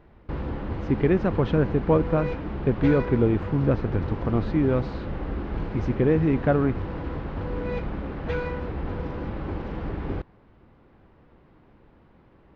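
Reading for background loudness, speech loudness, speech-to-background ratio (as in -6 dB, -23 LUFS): -32.0 LUFS, -24.0 LUFS, 8.0 dB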